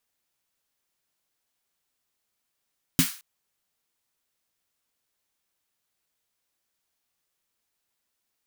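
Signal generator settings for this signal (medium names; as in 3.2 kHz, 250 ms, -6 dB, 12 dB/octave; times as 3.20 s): snare drum length 0.22 s, tones 170 Hz, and 260 Hz, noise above 1.2 kHz, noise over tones -4 dB, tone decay 0.12 s, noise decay 0.39 s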